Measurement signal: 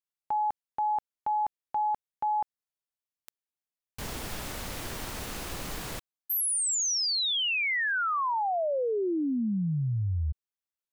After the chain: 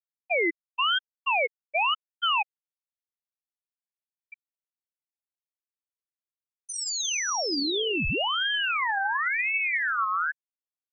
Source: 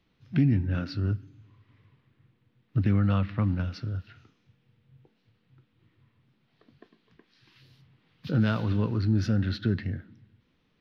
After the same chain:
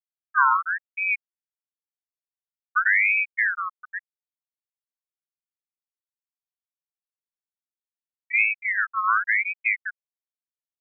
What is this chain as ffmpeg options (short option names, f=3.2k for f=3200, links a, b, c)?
-af "afftfilt=real='re*gte(hypot(re,im),0.398)':imag='im*gte(hypot(re,im),0.398)':win_size=1024:overlap=0.75,aeval=exprs='val(0)*sin(2*PI*1800*n/s+1800*0.35/0.94*sin(2*PI*0.94*n/s))':c=same,volume=6.5dB"